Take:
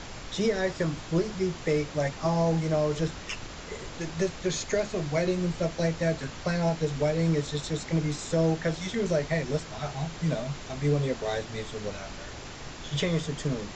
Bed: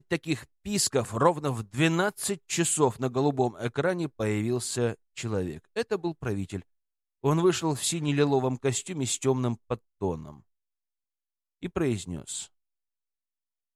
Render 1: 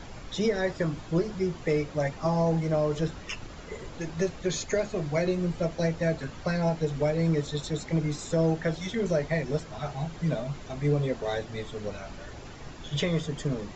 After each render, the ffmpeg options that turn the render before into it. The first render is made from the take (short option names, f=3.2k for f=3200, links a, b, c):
-af "afftdn=nr=8:nf=-42"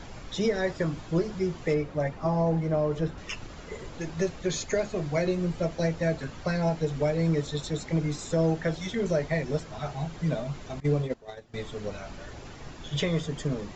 -filter_complex "[0:a]asettb=1/sr,asplit=3[a][b][c];[a]atrim=end=1.744[d];[b]atrim=start=1.74:end=3.18,asetpts=PTS-STARTPTS,afade=t=in:d=0.004:c=qsin,afade=t=out:st=1.436:d=0.004:c=qsin,highshelf=f=3.5k:g=-11.5[e];[c]atrim=start=3.176[f];[d][e]acrossfade=d=0.004:c1=hsin:c2=qsin[g];[g][f]acrossfade=d=0.004:c1=qsin:c2=hsin,asettb=1/sr,asplit=3[h][i][j];[h]atrim=end=10.804[k];[i]atrim=start=10.8:end=11.54,asetpts=PTS-STARTPTS,afade=t=in:d=0.004:c=qsin,afade=t=out:st=0.736:d=0.004:c=qsin,agate=range=-18dB:threshold=-28dB:ratio=16:release=100:detection=peak[l];[j]atrim=start=11.536[m];[k][l]acrossfade=d=0.004:c1=hsin:c2=qsin[n];[n][m]acrossfade=d=0.004:c1=qsin:c2=hsin"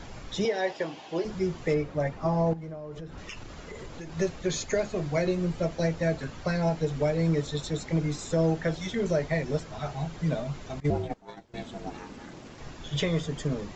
-filter_complex "[0:a]asettb=1/sr,asplit=3[a][b][c];[a]atrim=end=0.454[d];[b]atrim=start=0.45:end=1.25,asetpts=PTS-STARTPTS,afade=t=in:d=0.004:c=qsin,afade=t=out:st=0.796:d=0.004:c=qsin,highpass=360,equalizer=f=800:t=q:w=4:g=8,equalizer=f=1.3k:t=q:w=4:g=-8,equalizer=f=2.9k:t=q:w=4:g=8,lowpass=f=6.5k:w=0.5412,lowpass=f=6.5k:w=1.3066[e];[c]atrim=start=1.246[f];[d][e]acrossfade=d=0.004:c1=hsin:c2=qsin[g];[g][f]acrossfade=d=0.004:c1=qsin:c2=hsin,asettb=1/sr,asplit=3[h][i][j];[h]atrim=end=2.534[k];[i]atrim=start=2.53:end=4.16,asetpts=PTS-STARTPTS,afade=t=in:d=0.004:c=qsin,afade=t=out:st=1.626:d=0.004:c=qsin,acompressor=threshold=-35dB:ratio=16:attack=3.2:release=140:knee=1:detection=peak[l];[j]atrim=start=4.156[m];[k][l]acrossfade=d=0.004:c1=hsin:c2=qsin[n];[n][m]acrossfade=d=0.004:c1=qsin:c2=hsin,asettb=1/sr,asplit=3[o][p][q];[o]atrim=end=10.904[r];[p]atrim=start=10.9:end=12.58,asetpts=PTS-STARTPTS,afade=t=in:d=0.004:c=qsin,afade=t=out:st=1.676:d=0.004:c=qsin,aeval=exprs='val(0)*sin(2*PI*240*n/s)':c=same[s];[q]atrim=start=12.576[t];[r][s]acrossfade=d=0.004:c1=hsin:c2=qsin[u];[u][t]acrossfade=d=0.004:c1=qsin:c2=hsin"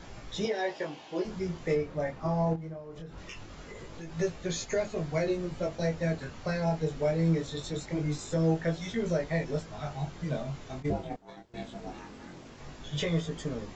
-af "flanger=delay=17.5:depth=7.8:speed=0.22"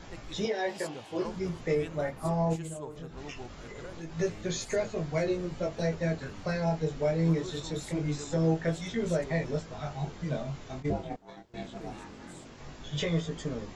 -filter_complex "[1:a]volume=-20dB[a];[0:a][a]amix=inputs=2:normalize=0"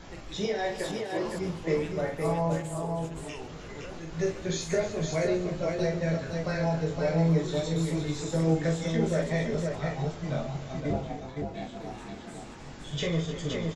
-af "aecho=1:1:44|139|304|516|638:0.501|0.15|0.211|0.631|0.106"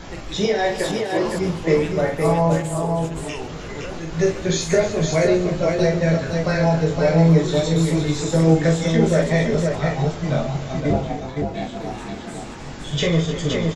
-af "volume=10dB"